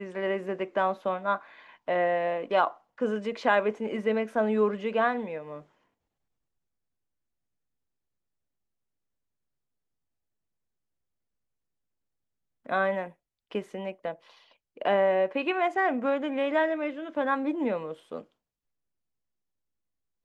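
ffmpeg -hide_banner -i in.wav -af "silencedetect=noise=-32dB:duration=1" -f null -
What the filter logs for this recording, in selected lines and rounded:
silence_start: 5.56
silence_end: 12.69 | silence_duration: 7.13
silence_start: 18.19
silence_end: 20.25 | silence_duration: 2.06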